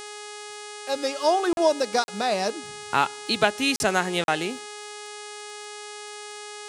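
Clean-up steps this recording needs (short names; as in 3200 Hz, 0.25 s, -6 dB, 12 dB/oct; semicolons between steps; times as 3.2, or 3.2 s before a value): de-click; de-hum 417.1 Hz, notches 24; interpolate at 1.53/2.04/3.76/4.24, 41 ms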